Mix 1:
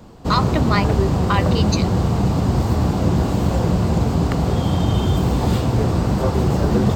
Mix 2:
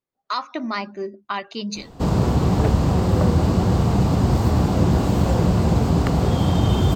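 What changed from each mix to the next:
speech -5.5 dB; background: entry +1.75 s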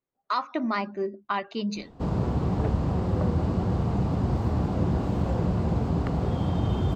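background -7.5 dB; master: add LPF 2000 Hz 6 dB/oct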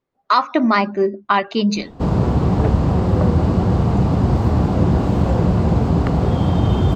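speech +12.0 dB; background +9.5 dB

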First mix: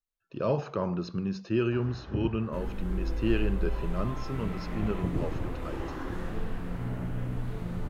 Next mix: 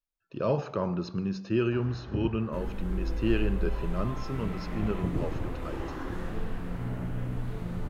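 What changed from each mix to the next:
reverb: on, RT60 1.1 s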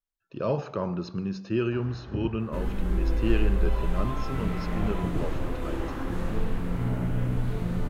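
second sound +6.0 dB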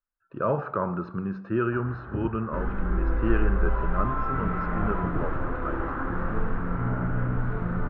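master: add synth low-pass 1400 Hz, resonance Q 3.8

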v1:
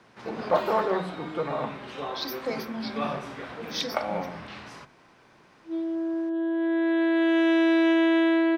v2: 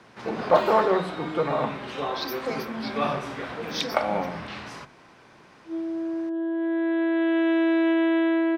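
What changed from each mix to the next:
first sound +4.5 dB; second sound: add air absorption 250 m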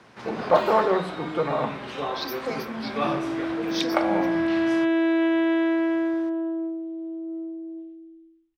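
second sound: entry -2.65 s

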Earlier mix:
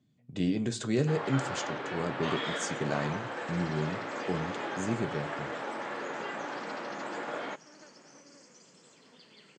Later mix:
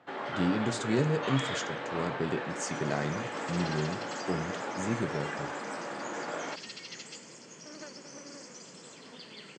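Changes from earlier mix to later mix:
first sound: entry -1.00 s; second sound +9.0 dB

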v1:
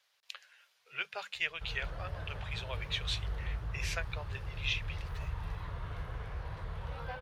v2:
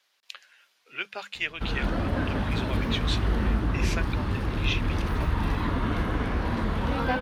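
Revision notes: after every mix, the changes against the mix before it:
background +11.5 dB; master: remove EQ curve 150 Hz 0 dB, 240 Hz -26 dB, 460 Hz -4 dB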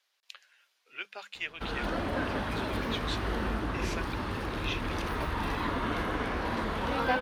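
speech -6.5 dB; master: add tone controls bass -10 dB, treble +1 dB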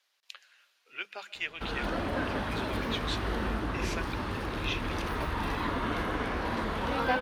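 reverb: on, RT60 2.1 s

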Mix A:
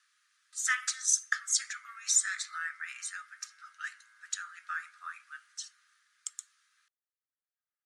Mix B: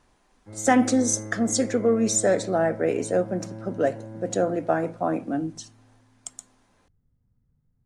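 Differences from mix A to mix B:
background: entry -0.90 s; master: remove rippled Chebyshev high-pass 1200 Hz, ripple 3 dB

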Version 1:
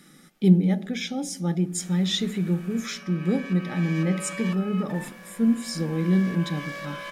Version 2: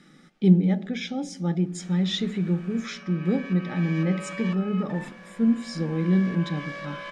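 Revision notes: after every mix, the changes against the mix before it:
master: add air absorption 100 m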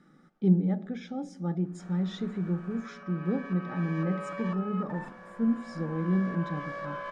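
speech -5.5 dB; master: add resonant high shelf 1800 Hz -9 dB, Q 1.5

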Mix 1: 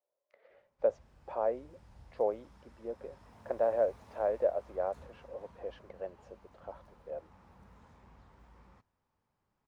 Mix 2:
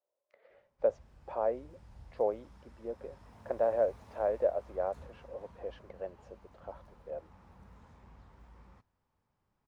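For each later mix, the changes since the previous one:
master: add low shelf 130 Hz +4.5 dB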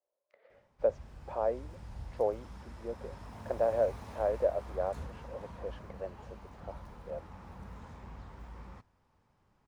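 background +9.0 dB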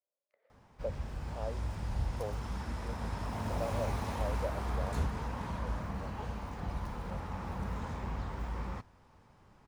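speech -10.0 dB; background +10.0 dB

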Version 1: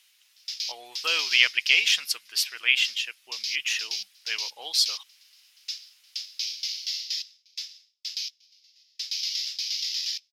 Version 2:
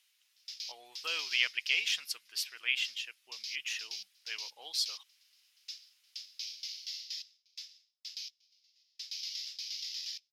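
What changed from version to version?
speech -10.0 dB; background -10.5 dB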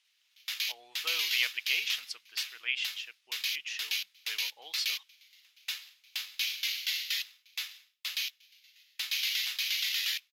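speech: add air absorption 54 m; background: remove band-pass 5200 Hz, Q 5.6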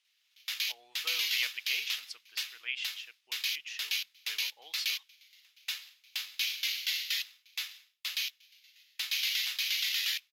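speech -4.0 dB

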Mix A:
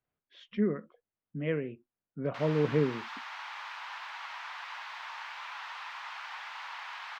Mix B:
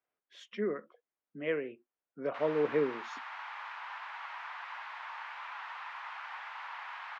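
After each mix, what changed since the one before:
speech: remove air absorption 350 m; master: add three-band isolator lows -20 dB, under 290 Hz, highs -12 dB, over 2600 Hz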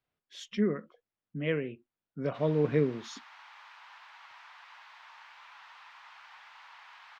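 background -10.5 dB; master: remove three-band isolator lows -20 dB, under 290 Hz, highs -12 dB, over 2600 Hz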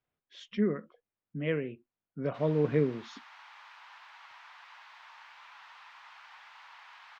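speech: add air absorption 150 m

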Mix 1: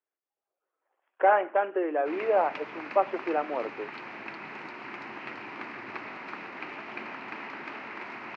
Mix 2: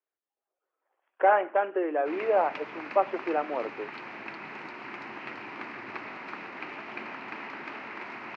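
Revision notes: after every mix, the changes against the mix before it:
none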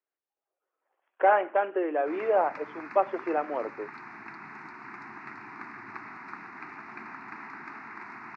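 background: add fixed phaser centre 1300 Hz, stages 4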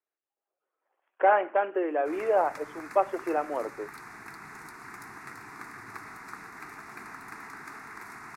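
background: remove speaker cabinet 130–4200 Hz, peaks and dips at 230 Hz +5 dB, 340 Hz +4 dB, 480 Hz -9 dB, 920 Hz +4 dB, 2500 Hz +5 dB, 3500 Hz -8 dB

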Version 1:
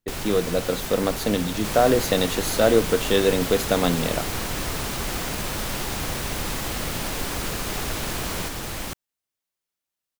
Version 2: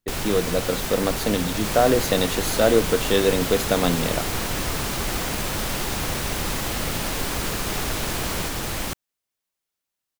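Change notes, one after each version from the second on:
first sound +3.5 dB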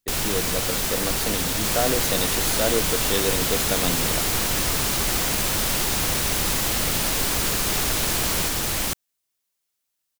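speech -6.5 dB; master: add high shelf 3200 Hz +7.5 dB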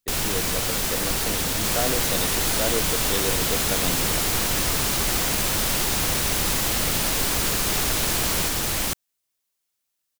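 speech -3.5 dB

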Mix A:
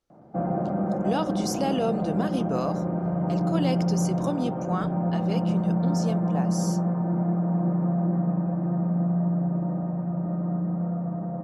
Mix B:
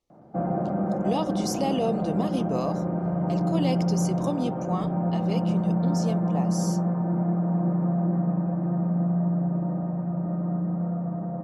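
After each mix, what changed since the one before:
speech: add Butterworth band-stop 1500 Hz, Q 2.5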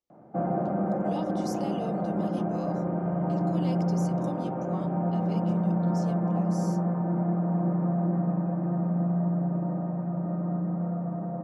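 speech -10.5 dB; master: add low shelf 85 Hz -11 dB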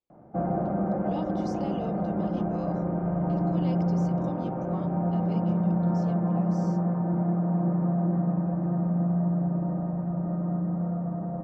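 background: remove HPF 130 Hz 12 dB/oct; master: add air absorption 130 m

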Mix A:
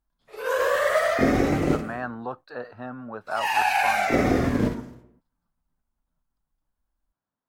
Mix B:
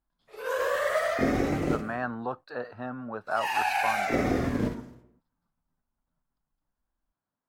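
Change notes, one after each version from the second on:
background -5.0 dB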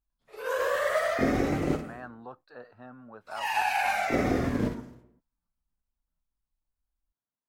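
speech -11.0 dB

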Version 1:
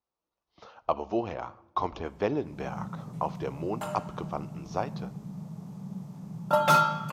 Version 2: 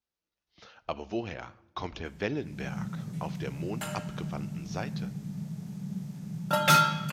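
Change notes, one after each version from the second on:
background: send on; master: add EQ curve 180 Hz 0 dB, 1100 Hz -10 dB, 1600 Hz +4 dB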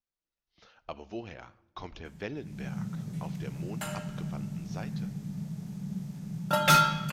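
speech -6.0 dB; master: remove HPF 54 Hz

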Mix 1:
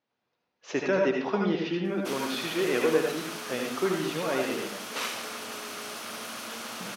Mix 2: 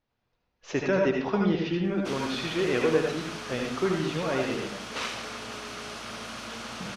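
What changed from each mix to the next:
background: add LPF 6600 Hz 12 dB/oct; master: remove HPF 210 Hz 12 dB/oct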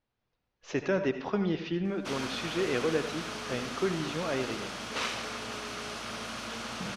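speech: send -10.5 dB

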